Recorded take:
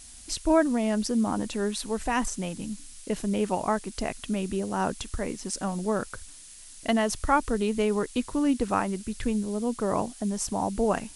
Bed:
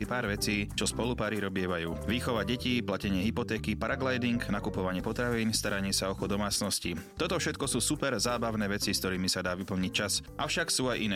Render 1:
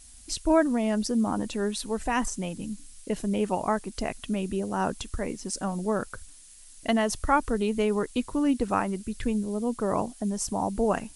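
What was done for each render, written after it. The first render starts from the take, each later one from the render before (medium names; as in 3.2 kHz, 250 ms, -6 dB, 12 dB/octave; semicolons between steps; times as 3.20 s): noise reduction 6 dB, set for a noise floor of -47 dBFS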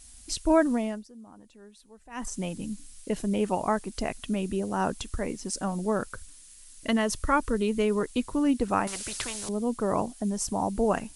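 0.74–2.40 s: dip -22.5 dB, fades 0.30 s; 6.07–8.01 s: Butterworth band-stop 750 Hz, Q 3.5; 8.87–9.49 s: spectrum-flattening compressor 4:1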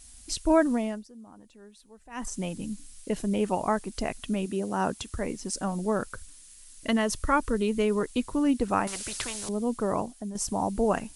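4.45–5.15 s: high-pass 190 Hz -> 46 Hz; 9.82–10.35 s: fade out, to -9 dB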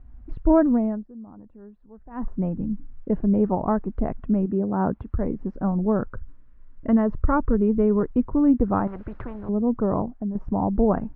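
low-pass 1.4 kHz 24 dB/octave; bass shelf 310 Hz +11.5 dB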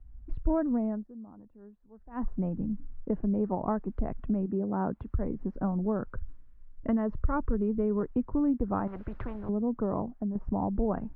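compression 3:1, threshold -28 dBFS, peak gain reduction 12 dB; three bands expanded up and down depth 40%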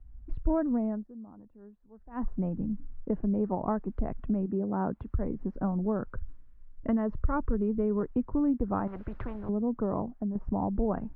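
no audible change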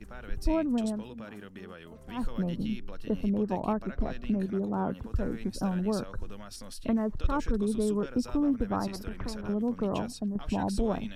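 add bed -14.5 dB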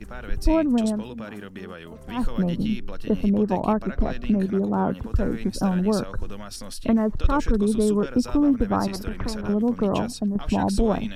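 trim +7.5 dB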